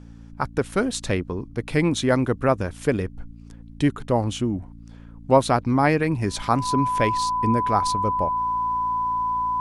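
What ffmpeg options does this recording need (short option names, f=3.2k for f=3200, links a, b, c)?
-af "bandreject=f=56.8:t=h:w=4,bandreject=f=113.6:t=h:w=4,bandreject=f=170.4:t=h:w=4,bandreject=f=227.2:t=h:w=4,bandreject=f=284:t=h:w=4,bandreject=f=1k:w=30"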